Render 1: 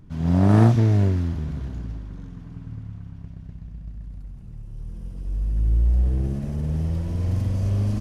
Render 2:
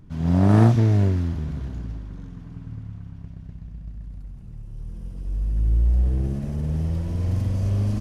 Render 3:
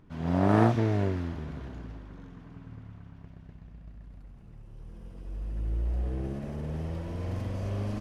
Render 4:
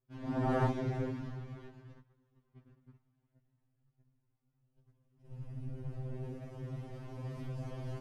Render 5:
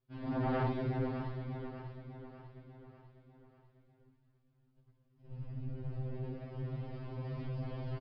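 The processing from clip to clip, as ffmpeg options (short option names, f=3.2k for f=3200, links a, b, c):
-af anull
-af "bass=f=250:g=-11,treble=f=4k:g=-9"
-af "afftfilt=real='hypot(re,im)*cos(2*PI*random(0))':imag='hypot(re,im)*sin(2*PI*random(1))':win_size=512:overlap=0.75,agate=range=-19dB:threshold=-47dB:ratio=16:detection=peak,afftfilt=real='re*2.45*eq(mod(b,6),0)':imag='im*2.45*eq(mod(b,6),0)':win_size=2048:overlap=0.75"
-filter_complex "[0:a]asoftclip=type=tanh:threshold=-29dB,asplit=2[a][b];[b]aecho=0:1:596|1192|1788|2384|2980:0.299|0.149|0.0746|0.0373|0.0187[c];[a][c]amix=inputs=2:normalize=0,aresample=11025,aresample=44100,volume=1.5dB"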